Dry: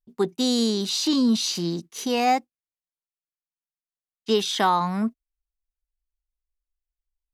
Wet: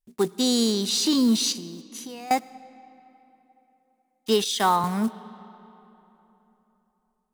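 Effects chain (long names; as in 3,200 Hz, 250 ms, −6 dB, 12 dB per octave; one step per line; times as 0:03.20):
one scale factor per block 5 bits
parametric band 9,200 Hz +6.5 dB 0.83 octaves
0:01.52–0:02.31: downward compressor 16 to 1, threshold −36 dBFS, peak gain reduction 19.5 dB
comb and all-pass reverb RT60 3.5 s, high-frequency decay 0.65×, pre-delay 40 ms, DRR 18 dB
0:04.44–0:04.84: multiband upward and downward expander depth 70%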